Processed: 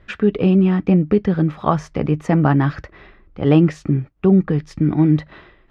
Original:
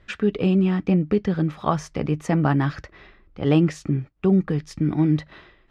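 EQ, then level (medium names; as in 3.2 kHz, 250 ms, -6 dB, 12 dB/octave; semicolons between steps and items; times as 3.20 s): treble shelf 4.1 kHz -11.5 dB; +5.0 dB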